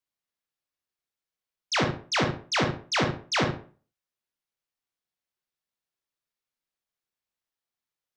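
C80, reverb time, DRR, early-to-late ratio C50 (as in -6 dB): 13.5 dB, no single decay rate, 4.0 dB, 5.5 dB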